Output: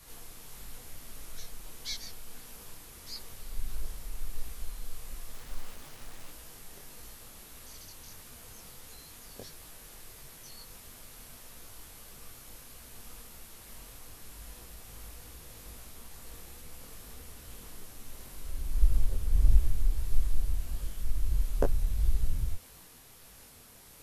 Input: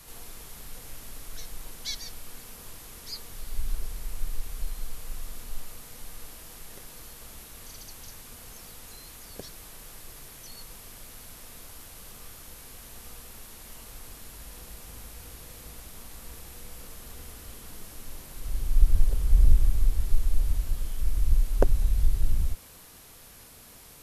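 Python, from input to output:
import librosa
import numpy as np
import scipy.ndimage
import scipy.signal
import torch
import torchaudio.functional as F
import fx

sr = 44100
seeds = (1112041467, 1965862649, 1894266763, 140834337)

y = fx.delta_hold(x, sr, step_db=-41.0, at=(5.34, 6.29))
y = fx.detune_double(y, sr, cents=54)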